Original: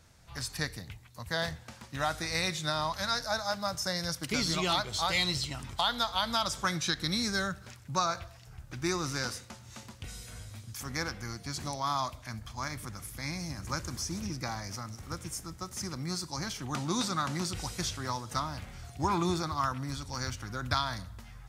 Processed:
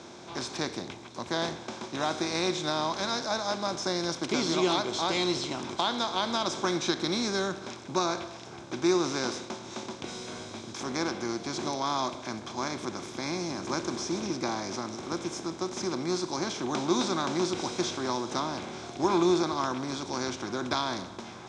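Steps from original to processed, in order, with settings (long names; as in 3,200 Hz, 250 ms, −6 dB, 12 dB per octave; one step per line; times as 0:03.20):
compressor on every frequency bin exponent 0.6
loudspeaker in its box 210–6,500 Hz, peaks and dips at 250 Hz +3 dB, 360 Hz +9 dB, 1,300 Hz −6 dB, 1,900 Hz −10 dB, 2,900 Hz −5 dB, 4,500 Hz −7 dB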